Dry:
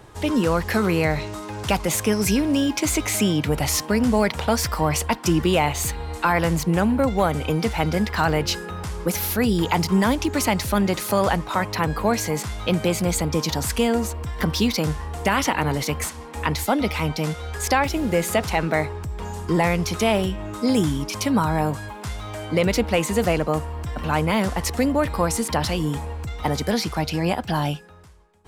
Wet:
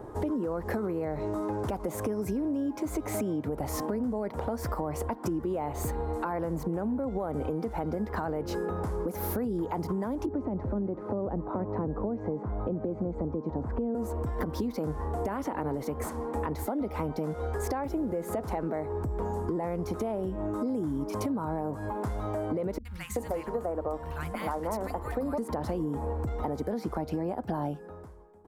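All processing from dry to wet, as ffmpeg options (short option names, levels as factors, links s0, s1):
-filter_complex "[0:a]asettb=1/sr,asplit=3[s0][s1][s2];[s0]atrim=end=10.264[s3];[s1]atrim=start=10.26:end=13.95,asetpts=PTS-STARTPTS,afade=t=in:d=0.004:c=qsin,afade=t=out:st=3.686:d=0.004:c=qsin,lowpass=1200,acrossover=split=450|3000[s4][s5][s6];[s5]acompressor=threshold=0.0141:ratio=2.5:attack=3.2:release=140:knee=2.83:detection=peak[s7];[s4][s7][s6]amix=inputs=3:normalize=0[s8];[s2]atrim=start=13.946[s9];[s3][s8]acrossfade=d=0.004:c1=hsin:c2=qsin[s10];[s10][s9]acrossfade=d=0.004:c1=qsin:c2=hsin,asettb=1/sr,asplit=3[s11][s12][s13];[s11]atrim=end=22.784[s14];[s12]atrim=start=22.78:end=25.38,asetpts=PTS-STARTPTS,afade=t=in:d=0.004:c=qsin,afade=t=out:st=2.596:d=0.004:c=qsin,equalizer=f=230:w=0.35:g=-11.5,bandreject=f=50:t=h:w=6,bandreject=f=100:t=h:w=6,bandreject=f=150:t=h:w=6,bandreject=f=200:t=h:w=6,bandreject=f=250:t=h:w=6,bandreject=f=300:t=h:w=6,bandreject=f=350:t=h:w=6,bandreject=f=400:t=h:w=6,bandreject=f=450:t=h:w=6,acrossover=split=170|1500[s15][s16][s17];[s17]adelay=70[s18];[s16]adelay=380[s19];[s15][s19][s18]amix=inputs=3:normalize=0,atrim=end_sample=114660[s20];[s13]atrim=start=25.376[s21];[s14][s20]acrossfade=d=0.004:c1=hsin:c2=qsin[s22];[s22][s21]acrossfade=d=0.004:c1=qsin:c2=hsin,firequalizer=gain_entry='entry(160,0);entry(250,7);entry(400,8);entry(2700,-17);entry(9800,-10);entry(15000,-6)':delay=0.05:min_phase=1,alimiter=limit=0.158:level=0:latency=1:release=215,acompressor=threshold=0.0398:ratio=6"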